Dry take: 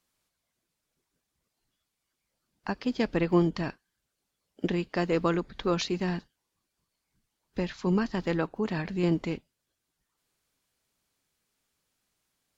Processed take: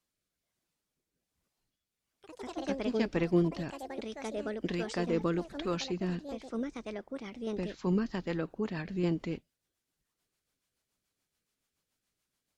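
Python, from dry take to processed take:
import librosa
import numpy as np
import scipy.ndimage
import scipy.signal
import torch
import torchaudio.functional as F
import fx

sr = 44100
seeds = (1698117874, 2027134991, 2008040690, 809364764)

y = fx.rotary_switch(x, sr, hz=1.2, then_hz=7.0, switch_at_s=7.57)
y = fx.echo_pitch(y, sr, ms=298, semitones=4, count=3, db_per_echo=-6.0)
y = y * 10.0 ** (-3.0 / 20.0)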